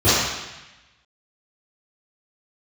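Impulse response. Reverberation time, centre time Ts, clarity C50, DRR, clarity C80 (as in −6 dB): 1.0 s, 102 ms, −3.0 dB, −16.5 dB, 0.5 dB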